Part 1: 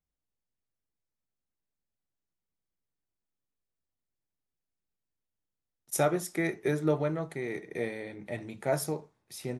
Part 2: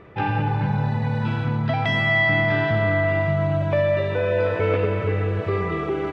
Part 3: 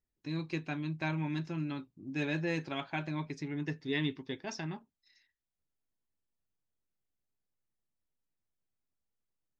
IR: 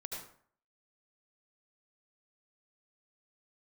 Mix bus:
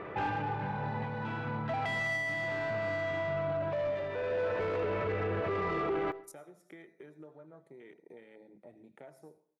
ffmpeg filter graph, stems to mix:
-filter_complex "[0:a]highpass=190,adelay=350,volume=-11.5dB,asplit=2[a][b];[b]volume=-23.5dB[c];[1:a]asplit=2[d][e];[e]highpass=f=720:p=1,volume=21dB,asoftclip=type=tanh:threshold=-8.5dB[f];[d][f]amix=inputs=2:normalize=0,lowpass=f=1.2k:p=1,volume=-6dB,volume=-5dB,asplit=2[g][h];[h]volume=-22dB[i];[2:a]volume=-14dB,asplit=2[j][k];[k]apad=whole_len=269893[l];[g][l]sidechaincompress=threshold=-58dB:ratio=8:attack=29:release=1070[m];[a][j]amix=inputs=2:normalize=0,afwtdn=0.00282,acompressor=threshold=-49dB:ratio=12,volume=0dB[n];[3:a]atrim=start_sample=2205[o];[c][i]amix=inputs=2:normalize=0[p];[p][o]afir=irnorm=-1:irlink=0[q];[m][n][q]amix=inputs=3:normalize=0,alimiter=level_in=2.5dB:limit=-24dB:level=0:latency=1:release=24,volume=-2.5dB"

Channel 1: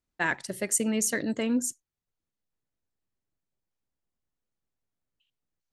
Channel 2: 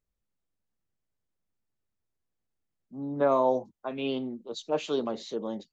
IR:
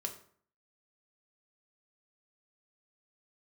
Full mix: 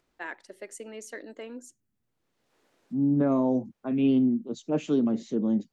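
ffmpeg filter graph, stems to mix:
-filter_complex "[0:a]highpass=f=340:w=0.5412,highpass=f=340:w=1.3066,aemphasis=mode=reproduction:type=bsi,acompressor=mode=upward:threshold=-47dB:ratio=2.5,afade=t=in:st=1.71:d=0.22:silence=0.334965,afade=t=out:st=3.95:d=0.32:silence=0.398107[a];[1:a]equalizer=f=125:t=o:w=1:g=7,equalizer=f=250:t=o:w=1:g=11,equalizer=f=500:t=o:w=1:g=-5,equalizer=f=1k:t=o:w=1:g=-8,equalizer=f=4k:t=o:w=1:g=-12,volume=2.5dB,asplit=2[b][c];[c]apad=whole_len=252620[d];[a][d]sidechaincompress=threshold=-36dB:ratio=5:attack=5.2:release=932[e];[e][b]amix=inputs=2:normalize=0,alimiter=limit=-15.5dB:level=0:latency=1:release=293"

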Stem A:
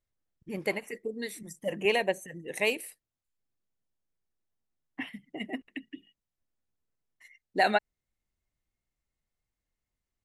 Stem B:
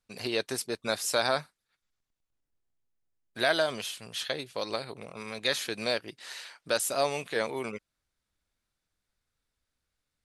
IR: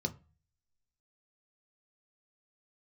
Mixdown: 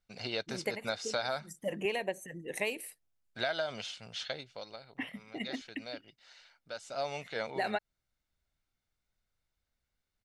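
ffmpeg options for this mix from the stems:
-filter_complex "[0:a]volume=-1.5dB[a];[1:a]lowpass=f=6.3k:w=0.5412,lowpass=f=6.3k:w=1.3066,aecho=1:1:1.4:0.43,volume=5.5dB,afade=t=out:st=4.15:d=0.58:silence=0.266073,afade=t=in:st=6.77:d=0.37:silence=0.334965,asplit=2[b][c];[c]apad=whole_len=451765[d];[a][d]sidechaincompress=threshold=-41dB:ratio=8:attack=20:release=145[e];[e][b]amix=inputs=2:normalize=0,acompressor=threshold=-29dB:ratio=6"

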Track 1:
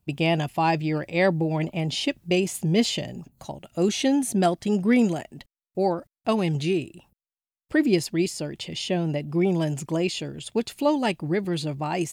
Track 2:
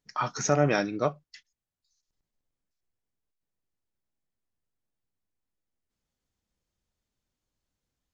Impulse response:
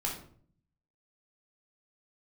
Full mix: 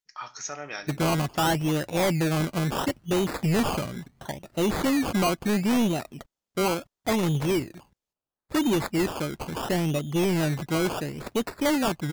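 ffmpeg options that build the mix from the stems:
-filter_complex "[0:a]acrusher=samples=19:mix=1:aa=0.000001:lfo=1:lforange=11.4:lforate=0.73,volume=21dB,asoftclip=hard,volume=-21dB,adelay=800,volume=1dB[a];[1:a]tiltshelf=f=760:g=-9,volume=-13.5dB,asplit=2[b][c];[c]volume=-14.5dB[d];[2:a]atrim=start_sample=2205[e];[d][e]afir=irnorm=-1:irlink=0[f];[a][b][f]amix=inputs=3:normalize=0"

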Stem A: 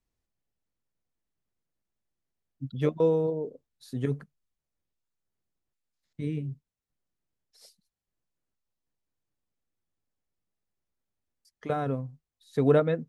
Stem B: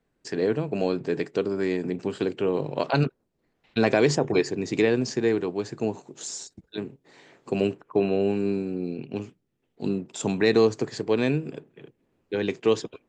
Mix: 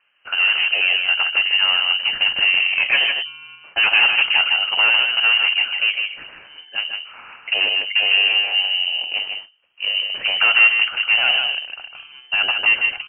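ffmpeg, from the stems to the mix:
-filter_complex "[0:a]acrusher=samples=34:mix=1:aa=0.000001,adelay=250,volume=-13dB,asplit=2[a][b];[b]volume=-15.5dB[c];[1:a]bandreject=f=50:t=h:w=6,bandreject=f=100:t=h:w=6,bandreject=f=150:t=h:w=6,bandreject=f=200:t=h:w=6,bandreject=f=250:t=h:w=6,bandreject=f=300:t=h:w=6,bandreject=f=350:t=h:w=6,bandreject=f=400:t=h:w=6,asplit=2[d][e];[e]highpass=f=720:p=1,volume=23dB,asoftclip=type=tanh:threshold=-7dB[f];[d][f]amix=inputs=2:normalize=0,lowpass=f=2.1k:p=1,volume=-6dB,volume=0dB,asplit=3[g][h][i];[h]volume=-5dB[j];[i]apad=whole_len=588259[k];[a][k]sidechaincompress=threshold=-30dB:ratio=8:attack=16:release=390[l];[c][j]amix=inputs=2:normalize=0,aecho=0:1:154:1[m];[l][g][m]amix=inputs=3:normalize=0,lowpass=f=2.7k:t=q:w=0.5098,lowpass=f=2.7k:t=q:w=0.6013,lowpass=f=2.7k:t=q:w=0.9,lowpass=f=2.7k:t=q:w=2.563,afreqshift=-3200"

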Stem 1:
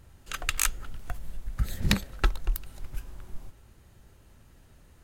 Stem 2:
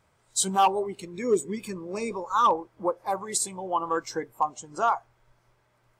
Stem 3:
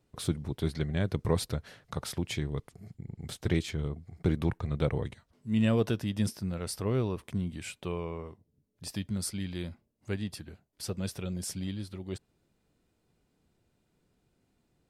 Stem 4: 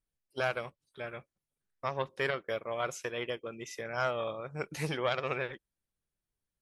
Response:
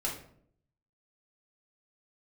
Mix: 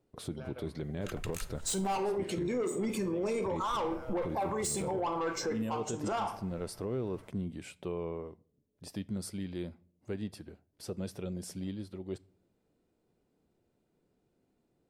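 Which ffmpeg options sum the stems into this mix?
-filter_complex "[0:a]adelay=750,volume=-11.5dB,asplit=3[a][b][c];[a]atrim=end=1.86,asetpts=PTS-STARTPTS,afade=t=out:st=1.856:d=0.004:c=hsin[d];[b]atrim=start=1.86:end=3.62,asetpts=PTS-STARTPTS,volume=0[e];[c]atrim=start=3.62,asetpts=PTS-STARTPTS,afade=t=in:d=0.004:c=hsin[f];[d][e][f]concat=n=3:v=0:a=1,asplit=2[g][h];[h]volume=-17dB[i];[1:a]asoftclip=type=tanh:threshold=-25.5dB,adelay=1300,volume=1dB,asplit=2[j][k];[k]volume=-9.5dB[l];[2:a]volume=-9dB,asplit=2[m][n];[n]volume=-19.5dB[o];[3:a]alimiter=level_in=4dB:limit=-24dB:level=0:latency=1:release=88,volume=-4dB,acompressor=threshold=-39dB:ratio=6,volume=-12.5dB,asplit=2[p][q];[q]volume=-7dB[r];[j][m][p]amix=inputs=3:normalize=0,equalizer=f=410:w=0.51:g=10.5,acompressor=threshold=-28dB:ratio=6,volume=0dB[s];[4:a]atrim=start_sample=2205[t];[i][l][o][r]amix=inputs=4:normalize=0[u];[u][t]afir=irnorm=-1:irlink=0[v];[g][s][v]amix=inputs=3:normalize=0,alimiter=level_in=2dB:limit=-24dB:level=0:latency=1:release=23,volume=-2dB"

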